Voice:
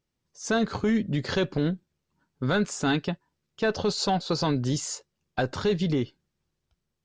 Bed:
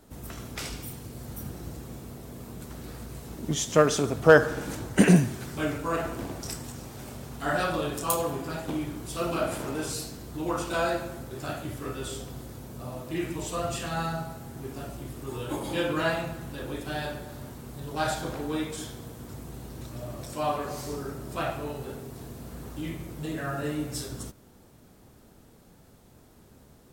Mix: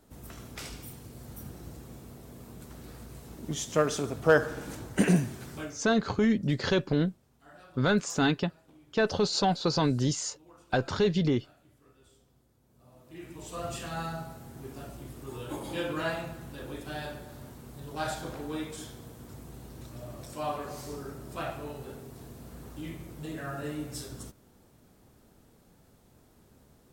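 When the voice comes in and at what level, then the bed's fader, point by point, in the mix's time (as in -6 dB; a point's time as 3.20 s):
5.35 s, -0.5 dB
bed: 5.57 s -5.5 dB
5.92 s -26.5 dB
12.57 s -26.5 dB
13.67 s -5 dB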